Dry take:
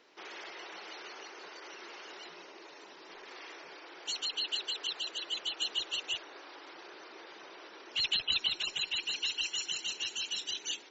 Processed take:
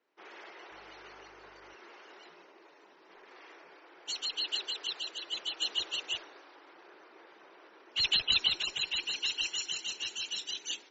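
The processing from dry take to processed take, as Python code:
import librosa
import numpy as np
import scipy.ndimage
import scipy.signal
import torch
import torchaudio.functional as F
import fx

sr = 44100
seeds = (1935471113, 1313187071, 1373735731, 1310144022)

y = fx.dmg_buzz(x, sr, base_hz=50.0, harmonics=29, level_db=-67.0, tilt_db=-4, odd_only=False, at=(0.69, 1.73), fade=0.02)
y = fx.band_widen(y, sr, depth_pct=70)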